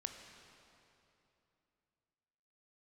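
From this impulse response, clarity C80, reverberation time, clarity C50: 6.5 dB, 2.9 s, 5.5 dB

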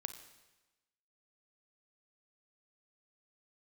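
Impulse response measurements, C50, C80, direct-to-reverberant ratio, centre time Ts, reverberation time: 10.0 dB, 11.5 dB, 9.0 dB, 14 ms, 1.1 s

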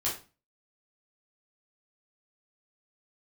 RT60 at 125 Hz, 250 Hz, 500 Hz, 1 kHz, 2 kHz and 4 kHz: 0.45, 0.45, 0.35, 0.30, 0.30, 0.30 s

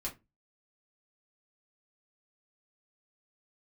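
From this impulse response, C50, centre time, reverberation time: 14.5 dB, 15 ms, 0.20 s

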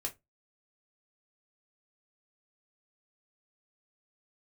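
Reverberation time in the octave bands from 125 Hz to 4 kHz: 0.30, 0.20, 0.20, 0.15, 0.15, 0.15 s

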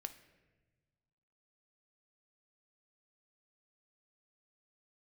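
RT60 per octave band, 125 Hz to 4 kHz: 2.1, 1.8, 1.5, 1.1, 1.2, 0.85 s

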